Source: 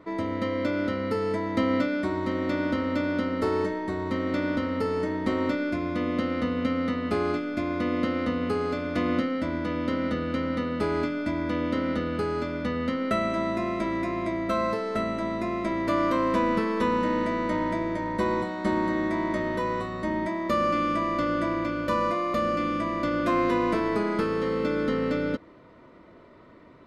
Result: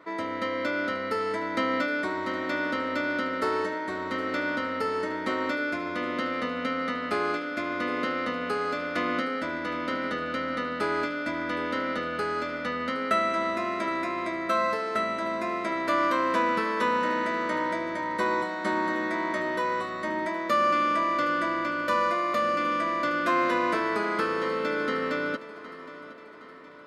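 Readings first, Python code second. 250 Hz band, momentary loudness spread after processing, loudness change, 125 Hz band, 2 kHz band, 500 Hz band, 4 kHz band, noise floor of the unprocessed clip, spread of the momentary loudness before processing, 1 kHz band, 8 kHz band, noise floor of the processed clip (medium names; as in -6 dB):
-5.5 dB, 6 LU, -0.5 dB, -11.0 dB, +5.0 dB, -2.0 dB, +2.5 dB, -51 dBFS, 4 LU, +2.5 dB, no reading, -42 dBFS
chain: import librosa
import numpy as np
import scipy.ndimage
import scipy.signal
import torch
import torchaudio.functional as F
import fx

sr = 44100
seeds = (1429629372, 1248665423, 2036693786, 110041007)

y = fx.highpass(x, sr, hz=670.0, slope=6)
y = fx.peak_eq(y, sr, hz=1500.0, db=5.0, octaves=0.55)
y = fx.echo_feedback(y, sr, ms=766, feedback_pct=52, wet_db=-16)
y = y * librosa.db_to_amplitude(2.5)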